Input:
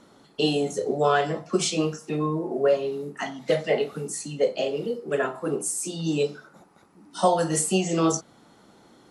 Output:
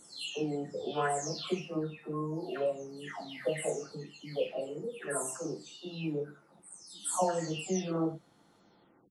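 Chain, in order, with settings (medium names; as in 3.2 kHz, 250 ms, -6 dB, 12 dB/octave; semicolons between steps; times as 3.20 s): delay that grows with frequency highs early, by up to 513 ms; trim -8.5 dB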